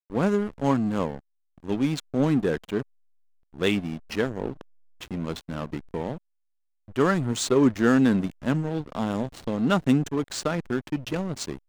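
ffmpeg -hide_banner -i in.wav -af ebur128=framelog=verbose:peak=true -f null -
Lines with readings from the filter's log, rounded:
Integrated loudness:
  I:         -26.1 LUFS
  Threshold: -36.5 LUFS
Loudness range:
  LRA:         7.4 LU
  Threshold: -46.7 LUFS
  LRA low:   -31.3 LUFS
  LRA high:  -23.9 LUFS
True peak:
  Peak:       -7.7 dBFS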